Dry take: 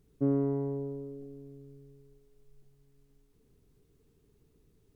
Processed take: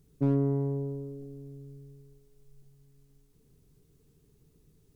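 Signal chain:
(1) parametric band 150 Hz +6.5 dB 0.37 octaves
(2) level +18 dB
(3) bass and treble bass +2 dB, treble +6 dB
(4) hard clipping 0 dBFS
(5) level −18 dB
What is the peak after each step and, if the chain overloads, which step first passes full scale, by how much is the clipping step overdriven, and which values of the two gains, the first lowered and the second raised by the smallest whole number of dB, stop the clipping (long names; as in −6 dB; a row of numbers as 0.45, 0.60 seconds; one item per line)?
−16.0, +2.0, +3.0, 0.0, −18.0 dBFS
step 2, 3.0 dB
step 2 +15 dB, step 5 −15 dB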